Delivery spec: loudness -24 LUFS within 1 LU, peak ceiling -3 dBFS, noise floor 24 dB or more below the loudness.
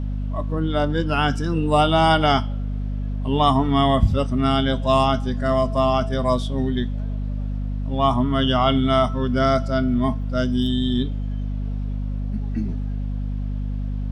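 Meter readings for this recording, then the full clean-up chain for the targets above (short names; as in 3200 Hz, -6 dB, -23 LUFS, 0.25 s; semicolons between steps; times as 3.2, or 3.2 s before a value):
hum 50 Hz; harmonics up to 250 Hz; hum level -23 dBFS; loudness -21.5 LUFS; peak -4.5 dBFS; loudness target -24.0 LUFS
-> de-hum 50 Hz, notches 5; gain -2.5 dB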